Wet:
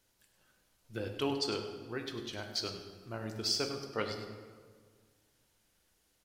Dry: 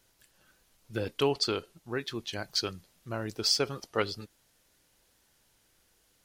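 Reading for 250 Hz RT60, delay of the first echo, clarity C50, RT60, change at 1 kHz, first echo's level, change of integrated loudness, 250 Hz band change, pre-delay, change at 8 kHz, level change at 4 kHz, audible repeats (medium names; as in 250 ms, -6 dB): 2.1 s, 100 ms, 6.0 dB, 1.8 s, -5.0 dB, -11.0 dB, -5.5 dB, -3.0 dB, 5 ms, -5.5 dB, -5.0 dB, 1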